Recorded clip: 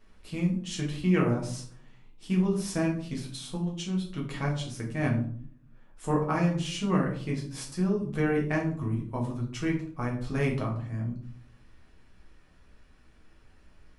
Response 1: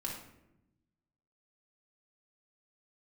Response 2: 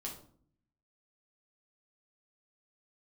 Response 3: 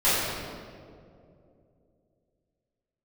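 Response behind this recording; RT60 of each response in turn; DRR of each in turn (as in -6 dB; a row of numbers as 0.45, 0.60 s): 2; 0.90, 0.55, 2.5 s; -3.0, -2.5, -15.5 dB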